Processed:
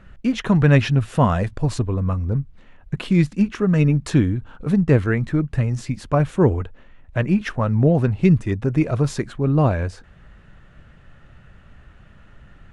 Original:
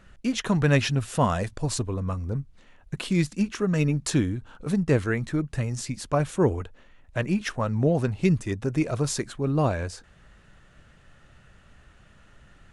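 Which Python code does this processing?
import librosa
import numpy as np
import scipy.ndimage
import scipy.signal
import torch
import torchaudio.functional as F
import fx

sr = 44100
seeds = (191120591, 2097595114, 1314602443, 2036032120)

y = fx.bass_treble(x, sr, bass_db=4, treble_db=-11)
y = F.gain(torch.from_numpy(y), 4.0).numpy()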